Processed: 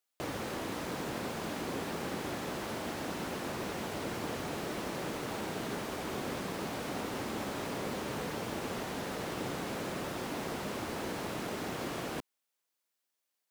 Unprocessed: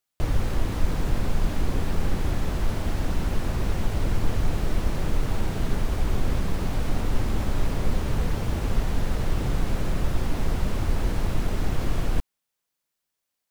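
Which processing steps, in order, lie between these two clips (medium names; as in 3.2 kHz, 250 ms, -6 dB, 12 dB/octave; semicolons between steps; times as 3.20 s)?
high-pass 260 Hz 12 dB/octave; trim -2.5 dB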